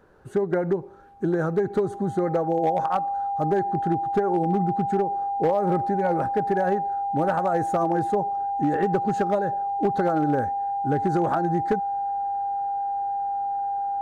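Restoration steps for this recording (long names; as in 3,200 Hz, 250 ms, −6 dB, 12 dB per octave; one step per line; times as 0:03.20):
clipped peaks rebuilt −15 dBFS
notch filter 800 Hz, Q 30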